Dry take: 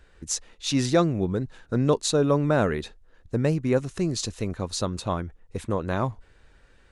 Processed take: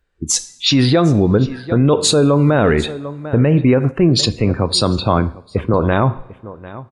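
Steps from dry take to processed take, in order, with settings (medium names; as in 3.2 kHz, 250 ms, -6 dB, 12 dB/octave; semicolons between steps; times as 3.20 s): spectral noise reduction 29 dB; delay 747 ms -22 dB; two-slope reverb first 0.51 s, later 2.2 s, from -22 dB, DRR 14 dB; loudness maximiser +19.5 dB; 3.91–5.74 s: three bands expanded up and down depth 40%; trim -3.5 dB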